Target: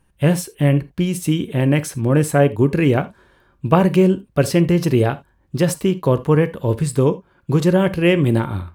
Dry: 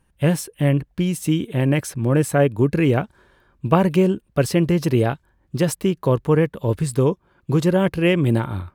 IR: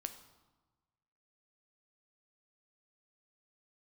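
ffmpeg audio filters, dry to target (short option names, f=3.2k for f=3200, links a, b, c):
-filter_complex "[0:a]asplit=2[a][b];[1:a]atrim=start_sample=2205,atrim=end_sample=3969[c];[b][c]afir=irnorm=-1:irlink=0,volume=9.5dB[d];[a][d]amix=inputs=2:normalize=0,volume=-8dB"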